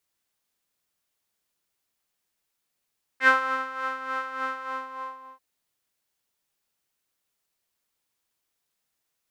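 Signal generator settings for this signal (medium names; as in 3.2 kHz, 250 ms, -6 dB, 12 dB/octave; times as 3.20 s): synth patch with tremolo C5, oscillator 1 saw, oscillator 2 square, interval -12 st, oscillator 2 level -6.5 dB, filter bandpass, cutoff 1 kHz, Q 5.6, filter envelope 1 oct, filter decay 0.12 s, attack 75 ms, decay 0.30 s, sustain -12.5 dB, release 0.89 s, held 1.30 s, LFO 3.4 Hz, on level 8.5 dB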